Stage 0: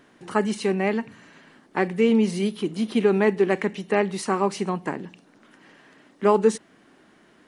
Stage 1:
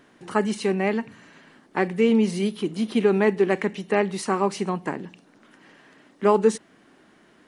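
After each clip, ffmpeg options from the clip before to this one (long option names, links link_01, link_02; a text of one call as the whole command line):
ffmpeg -i in.wav -af anull out.wav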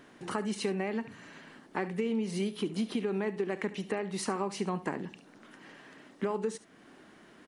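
ffmpeg -i in.wav -af "alimiter=limit=-17.5dB:level=0:latency=1:release=413,acompressor=threshold=-28dB:ratio=6,aecho=1:1:71:0.15" out.wav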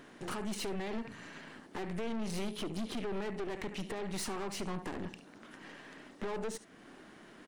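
ffmpeg -i in.wav -af "alimiter=limit=-24dB:level=0:latency=1:release=178,aeval=exprs='(tanh(100*val(0)+0.7)-tanh(0.7))/100':channel_layout=same,volume=5dB" out.wav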